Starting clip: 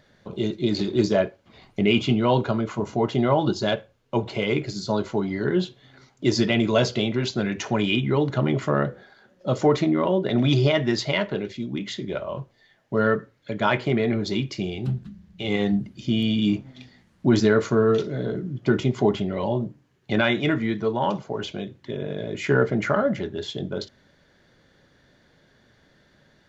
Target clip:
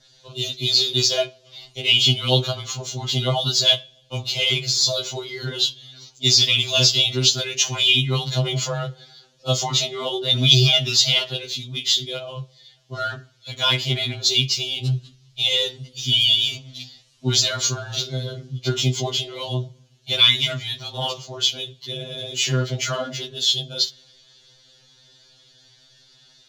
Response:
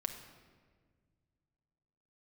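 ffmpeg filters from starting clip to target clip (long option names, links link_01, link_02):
-filter_complex "[0:a]equalizer=frequency=280:width=2.2:gain=-8,acrossover=split=270[link_01][link_02];[link_02]aexciter=amount=10.7:drive=4.6:freq=2900[link_03];[link_01][link_03]amix=inputs=2:normalize=0,adynamicequalizer=threshold=0.0398:dfrequency=3100:dqfactor=2.1:tfrequency=3100:tqfactor=2.1:attack=5:release=100:ratio=0.375:range=1.5:mode=boostabove:tftype=bell,adynamicsmooth=sensitivity=4:basefreq=6500,asplit=2[link_04][link_05];[1:a]atrim=start_sample=2205,asetrate=61740,aresample=44100[link_06];[link_05][link_06]afir=irnorm=-1:irlink=0,volume=-17.5dB[link_07];[link_04][link_07]amix=inputs=2:normalize=0,alimiter=level_in=-0.5dB:limit=-1dB:release=50:level=0:latency=1,afftfilt=real='re*2.45*eq(mod(b,6),0)':imag='im*2.45*eq(mod(b,6),0)':win_size=2048:overlap=0.75"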